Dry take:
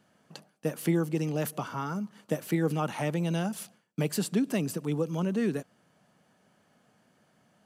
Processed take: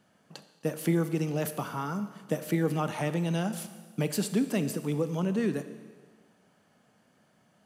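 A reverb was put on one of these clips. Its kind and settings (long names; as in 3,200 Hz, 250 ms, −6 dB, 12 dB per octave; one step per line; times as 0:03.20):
four-comb reverb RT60 1.5 s, combs from 28 ms, DRR 10.5 dB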